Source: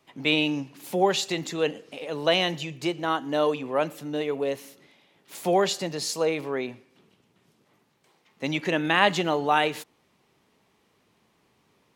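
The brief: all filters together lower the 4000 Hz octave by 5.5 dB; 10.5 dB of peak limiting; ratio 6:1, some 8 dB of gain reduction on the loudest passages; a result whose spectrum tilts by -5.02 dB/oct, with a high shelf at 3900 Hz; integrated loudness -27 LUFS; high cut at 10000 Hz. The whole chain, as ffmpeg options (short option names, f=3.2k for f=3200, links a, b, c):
-af "lowpass=10k,highshelf=f=3.9k:g=-6,equalizer=f=4k:t=o:g=-4.5,acompressor=threshold=-25dB:ratio=6,volume=7dB,alimiter=limit=-16dB:level=0:latency=1"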